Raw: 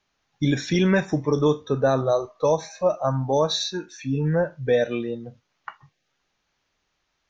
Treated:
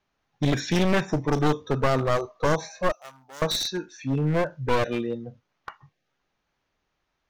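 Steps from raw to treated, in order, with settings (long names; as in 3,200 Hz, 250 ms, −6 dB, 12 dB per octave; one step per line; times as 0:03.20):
wavefolder on the positive side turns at −23 dBFS
0:02.92–0:03.42: first difference
one half of a high-frequency compander decoder only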